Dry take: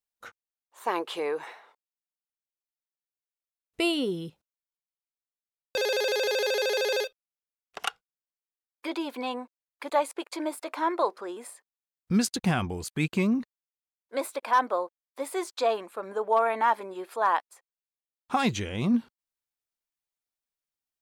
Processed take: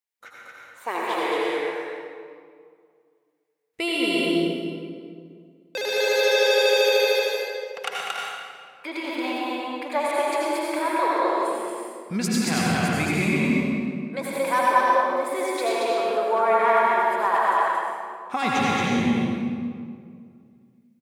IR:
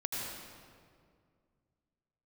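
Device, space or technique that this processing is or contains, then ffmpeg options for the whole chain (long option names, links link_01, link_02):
stadium PA: -filter_complex "[0:a]highpass=frequency=190:poles=1,equalizer=frequency=2100:width_type=o:width=0.42:gain=7,aecho=1:1:227.4|282.8:0.794|0.355[link_01];[1:a]atrim=start_sample=2205[link_02];[link_01][link_02]afir=irnorm=-1:irlink=0"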